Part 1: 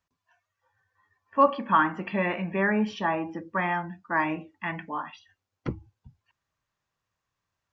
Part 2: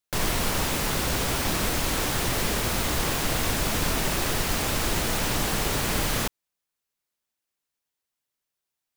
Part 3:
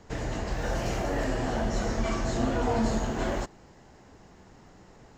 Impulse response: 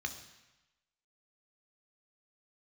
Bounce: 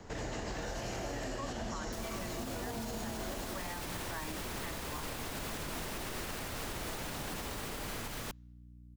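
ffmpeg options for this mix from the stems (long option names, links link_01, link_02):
-filter_complex "[0:a]volume=-8.5dB[link_01];[1:a]aeval=exprs='val(0)+0.00447*(sin(2*PI*60*n/s)+sin(2*PI*2*60*n/s)/2+sin(2*PI*3*60*n/s)/3+sin(2*PI*4*60*n/s)/4+sin(2*PI*5*60*n/s)/5)':channel_layout=same,adelay=1800,volume=-9dB,asplit=3[link_02][link_03][link_04];[link_03]volume=-21dB[link_05];[link_04]volume=-3.5dB[link_06];[2:a]volume=2dB,asplit=2[link_07][link_08];[link_08]volume=-7.5dB[link_09];[3:a]atrim=start_sample=2205[link_10];[link_05][link_10]afir=irnorm=-1:irlink=0[link_11];[link_06][link_09]amix=inputs=2:normalize=0,aecho=0:1:234:1[link_12];[link_01][link_02][link_07][link_11][link_12]amix=inputs=5:normalize=0,acrossover=split=190|2800[link_13][link_14][link_15];[link_13]acompressor=threshold=-38dB:ratio=4[link_16];[link_14]acompressor=threshold=-35dB:ratio=4[link_17];[link_15]acompressor=threshold=-40dB:ratio=4[link_18];[link_16][link_17][link_18]amix=inputs=3:normalize=0,alimiter=level_in=6dB:limit=-24dB:level=0:latency=1:release=97,volume=-6dB"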